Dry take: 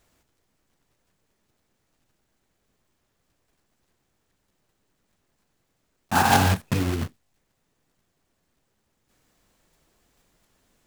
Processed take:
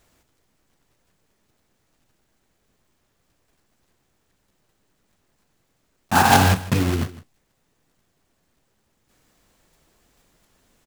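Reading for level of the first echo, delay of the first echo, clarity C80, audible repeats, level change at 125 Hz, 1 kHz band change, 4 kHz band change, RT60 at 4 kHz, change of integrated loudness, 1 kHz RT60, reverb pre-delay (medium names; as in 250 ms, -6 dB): -17.5 dB, 156 ms, no reverb, 1, +4.0 dB, +4.0 dB, +4.0 dB, no reverb, +4.0 dB, no reverb, no reverb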